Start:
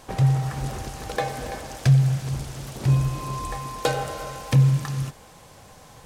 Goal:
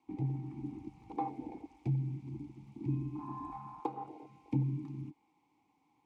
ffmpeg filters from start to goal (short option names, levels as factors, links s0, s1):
-filter_complex "[0:a]asettb=1/sr,asplit=3[s0][s1][s2];[s0]atrim=end=3.864[s3];[s1]atrim=start=3.86:end=4.5,asetpts=PTS-STARTPTS,afade=t=in:d=0.004:c=qsin,afade=t=out:st=0.636:d=0.004:c=qsin,acrossover=split=130|1000[s4][s5][s6];[s4]acompressor=threshold=0.00398:ratio=4[s7];[s5]acompressor=threshold=0.0355:ratio=4[s8];[s6]acompressor=threshold=0.0141:ratio=4[s9];[s7][s8][s9]amix=inputs=3:normalize=0[s10];[s2]atrim=start=4.496[s11];[s3][s10]acrossfade=d=0.004:c1=hsin:c2=qsin[s12];[s12][s11]acrossfade=d=0.004:c1=qsin:c2=hsin,afwtdn=0.0501,acrossover=split=260|910|5300[s13][s14][s15][s16];[s16]acontrast=34[s17];[s13][s14][s15][s17]amix=inputs=4:normalize=0,asplit=3[s18][s19][s20];[s18]bandpass=f=300:t=q:w=8,volume=1[s21];[s19]bandpass=f=870:t=q:w=8,volume=0.501[s22];[s20]bandpass=f=2240:t=q:w=8,volume=0.355[s23];[s21][s22][s23]amix=inputs=3:normalize=0,volume=1.78"